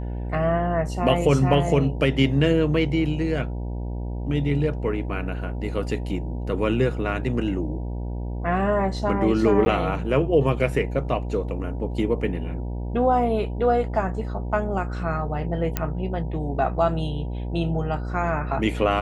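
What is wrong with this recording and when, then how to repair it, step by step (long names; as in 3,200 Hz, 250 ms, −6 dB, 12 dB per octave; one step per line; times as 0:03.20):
mains buzz 60 Hz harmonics 16 −29 dBFS
0:09.65–0:09.66: drop-out 10 ms
0:15.77: click −8 dBFS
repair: click removal
hum removal 60 Hz, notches 16
repair the gap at 0:09.65, 10 ms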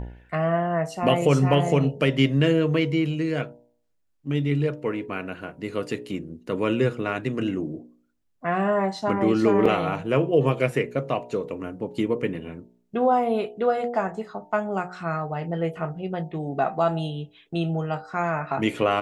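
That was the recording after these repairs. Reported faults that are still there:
0:15.77: click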